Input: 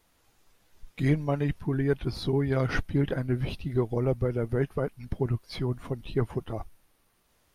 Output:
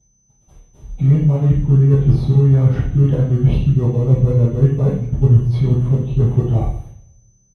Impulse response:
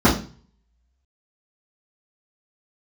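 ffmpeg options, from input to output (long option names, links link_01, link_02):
-filter_complex "[0:a]agate=range=-33dB:threshold=-59dB:ratio=16:detection=peak,highshelf=frequency=5300:gain=5,areverse,acompressor=threshold=-39dB:ratio=8,areverse,aeval=exprs='val(0)+0.000891*sin(2*PI*6100*n/s)':channel_layout=same,flanger=delay=3.1:depth=4.2:regen=88:speed=0.67:shape=triangular,asplit=2[link_01][link_02];[link_02]acrusher=samples=29:mix=1:aa=0.000001,volume=-8dB[link_03];[link_01][link_03]amix=inputs=2:normalize=0,aresample=32000,aresample=44100[link_04];[1:a]atrim=start_sample=2205,asetrate=26019,aresample=44100[link_05];[link_04][link_05]afir=irnorm=-1:irlink=0,volume=-6dB"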